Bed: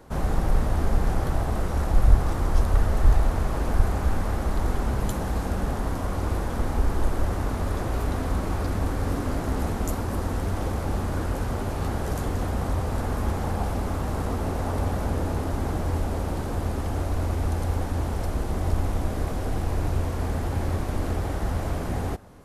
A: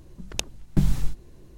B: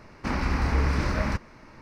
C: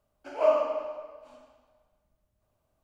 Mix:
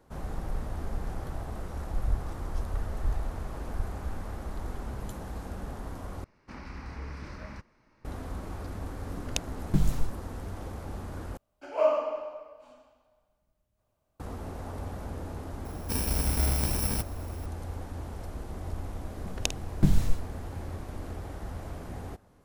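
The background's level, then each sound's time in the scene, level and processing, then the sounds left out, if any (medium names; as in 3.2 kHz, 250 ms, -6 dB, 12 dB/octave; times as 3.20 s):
bed -11.5 dB
6.24 s: replace with B -16 dB
8.97 s: add A -4 dB
11.37 s: replace with C -1.5 dB
15.65 s: add B -3 dB + bit-reversed sample order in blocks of 64 samples
19.06 s: add A -1.5 dB + doubling 50 ms -12 dB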